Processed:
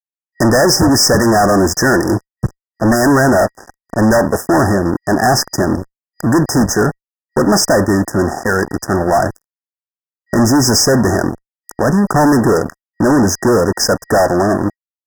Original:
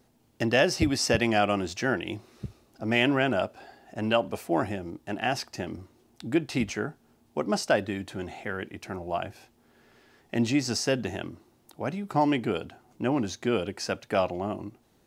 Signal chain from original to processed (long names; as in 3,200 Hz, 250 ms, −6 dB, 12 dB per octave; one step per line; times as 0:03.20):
fuzz pedal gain 35 dB, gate −43 dBFS
brick-wall band-stop 1,900–4,900 Hz
level +5 dB